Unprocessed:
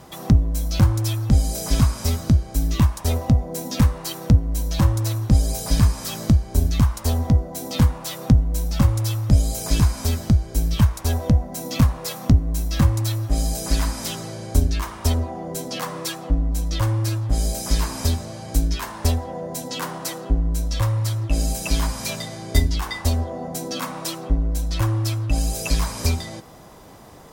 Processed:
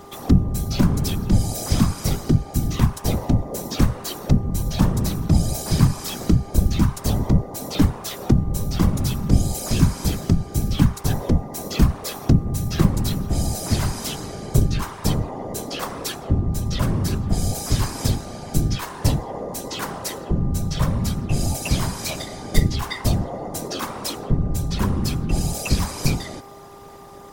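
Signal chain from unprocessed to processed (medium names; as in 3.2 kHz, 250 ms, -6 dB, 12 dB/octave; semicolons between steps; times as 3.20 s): whisper effect; mains buzz 400 Hz, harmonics 3, -45 dBFS -2 dB/octave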